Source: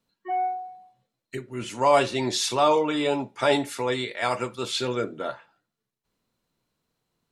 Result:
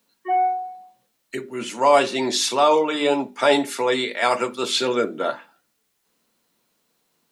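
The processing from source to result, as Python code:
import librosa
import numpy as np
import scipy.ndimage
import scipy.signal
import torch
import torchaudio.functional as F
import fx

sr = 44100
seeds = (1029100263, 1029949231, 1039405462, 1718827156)

p1 = scipy.signal.sosfilt(scipy.signal.butter(4, 180.0, 'highpass', fs=sr, output='sos'), x)
p2 = fx.hum_notches(p1, sr, base_hz=50, count=8)
p3 = fx.rider(p2, sr, range_db=10, speed_s=0.5)
p4 = p2 + (p3 * librosa.db_to_amplitude(-2.5))
y = fx.quant_dither(p4, sr, seeds[0], bits=12, dither='triangular')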